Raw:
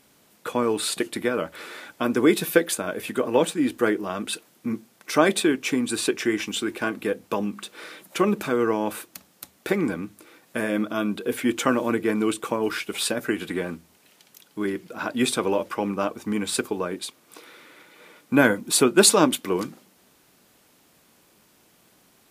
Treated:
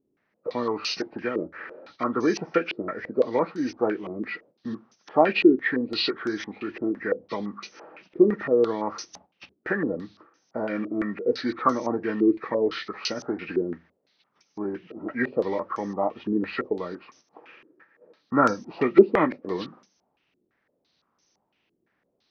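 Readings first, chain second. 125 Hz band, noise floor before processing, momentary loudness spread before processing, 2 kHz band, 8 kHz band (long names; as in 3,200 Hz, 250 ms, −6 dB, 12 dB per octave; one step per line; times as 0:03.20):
−4.5 dB, −60 dBFS, 15 LU, −4.0 dB, −20.0 dB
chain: hearing-aid frequency compression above 1,100 Hz 1.5 to 1
noise gate −49 dBFS, range −11 dB
low-pass on a step sequencer 5.9 Hz 360–6,100 Hz
level −5 dB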